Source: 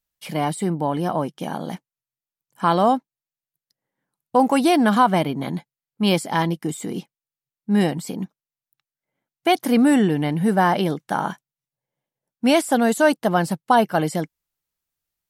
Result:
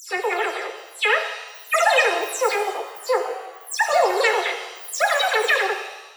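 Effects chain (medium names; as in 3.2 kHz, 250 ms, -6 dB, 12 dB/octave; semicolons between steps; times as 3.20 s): delay that grows with frequency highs early, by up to 683 ms; wide varispeed 2.48×; pitch-shifted reverb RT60 1 s, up +7 st, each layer -8 dB, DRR 5 dB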